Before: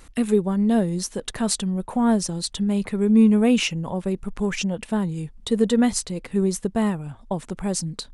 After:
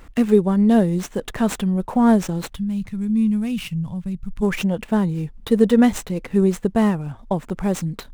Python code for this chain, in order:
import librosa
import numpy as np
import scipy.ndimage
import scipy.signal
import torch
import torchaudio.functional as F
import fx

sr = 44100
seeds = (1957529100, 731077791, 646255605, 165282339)

y = scipy.signal.medfilt(x, 9)
y = fx.curve_eq(y, sr, hz=(160.0, 400.0, 4000.0), db=(0, -23, -7), at=(2.54, 4.41), fade=0.02)
y = y * librosa.db_to_amplitude(4.5)